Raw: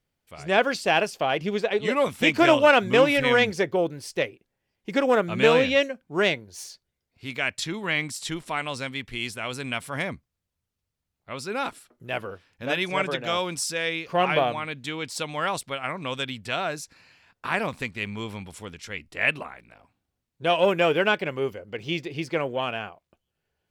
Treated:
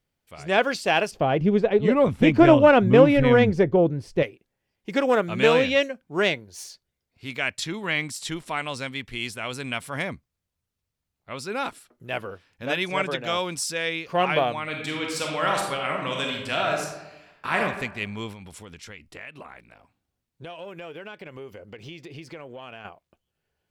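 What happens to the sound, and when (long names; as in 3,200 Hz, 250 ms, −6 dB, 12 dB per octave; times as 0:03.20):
0:01.11–0:04.23: spectral tilt −4 dB per octave
0:14.62–0:17.59: thrown reverb, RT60 1 s, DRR −0.5 dB
0:18.32–0:22.85: downward compressor, threshold −37 dBFS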